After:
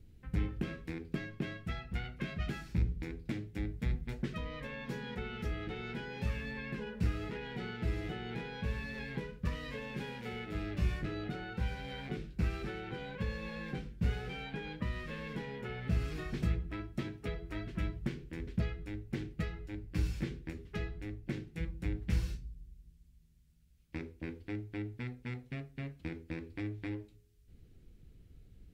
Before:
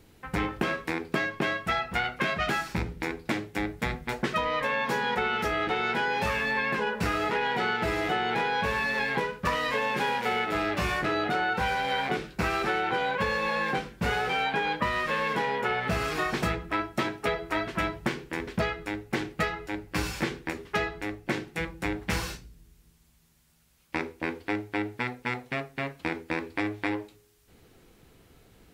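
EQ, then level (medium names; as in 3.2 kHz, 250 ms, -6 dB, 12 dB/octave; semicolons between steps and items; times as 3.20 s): amplifier tone stack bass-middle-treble 10-0-1; treble shelf 3.9 kHz -8.5 dB; +11.5 dB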